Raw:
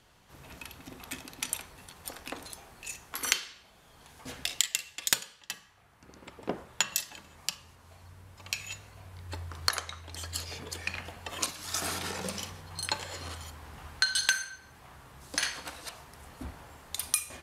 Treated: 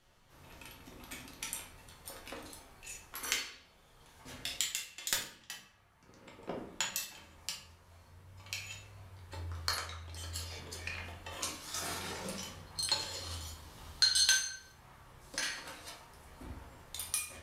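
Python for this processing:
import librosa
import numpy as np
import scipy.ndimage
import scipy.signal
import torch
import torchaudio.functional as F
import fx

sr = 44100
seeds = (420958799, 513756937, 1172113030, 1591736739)

y = fx.high_shelf_res(x, sr, hz=2900.0, db=6.0, q=1.5, at=(12.78, 14.72))
y = fx.room_shoebox(y, sr, seeds[0], volume_m3=69.0, walls='mixed', distance_m=0.88)
y = F.gain(torch.from_numpy(y), -9.0).numpy()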